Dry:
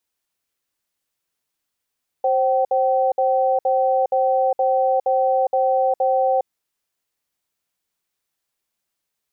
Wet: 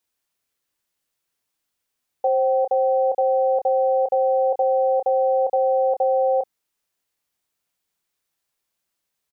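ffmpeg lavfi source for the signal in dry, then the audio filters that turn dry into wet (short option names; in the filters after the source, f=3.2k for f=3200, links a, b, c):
-f lavfi -i "aevalsrc='0.126*(sin(2*PI*528*t)+sin(2*PI*768*t))*clip(min(mod(t,0.47),0.41-mod(t,0.47))/0.005,0,1)':d=4.23:s=44100"
-filter_complex "[0:a]asplit=2[a][b];[b]adelay=28,volume=-9dB[c];[a][c]amix=inputs=2:normalize=0"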